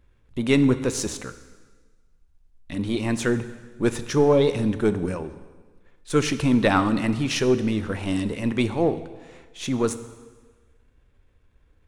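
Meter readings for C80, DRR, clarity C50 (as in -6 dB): 14.5 dB, 11.5 dB, 13.0 dB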